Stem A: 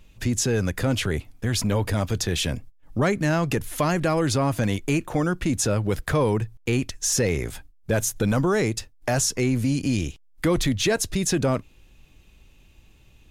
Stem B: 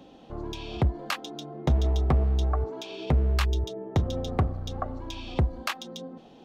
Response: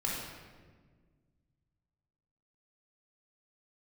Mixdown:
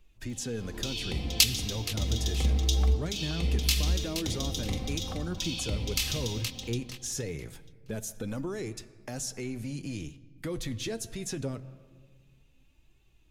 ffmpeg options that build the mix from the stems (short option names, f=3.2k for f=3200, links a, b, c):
-filter_complex "[0:a]flanger=delay=2.5:depth=6.6:regen=48:speed=0.23:shape=triangular,volume=-8.5dB,asplit=3[a][b][c];[b]volume=-20dB[d];[1:a]aecho=1:1:3.9:0.49,aexciter=amount=4.5:drive=8.7:freq=2.1k,adelay=300,volume=-2dB,asplit=3[e][f][g];[f]volume=-14dB[h];[g]volume=-15dB[i];[c]apad=whole_len=297812[j];[e][j]sidechaincompress=threshold=-50dB:ratio=8:attack=16:release=193[k];[2:a]atrim=start_sample=2205[l];[d][h]amix=inputs=2:normalize=0[m];[m][l]afir=irnorm=-1:irlink=0[n];[i]aecho=0:1:472|944|1416|1888:1|0.25|0.0625|0.0156[o];[a][k][n][o]amix=inputs=4:normalize=0,acrossover=split=470|3000[p][q][r];[q]acompressor=threshold=-43dB:ratio=6[s];[p][s][r]amix=inputs=3:normalize=0"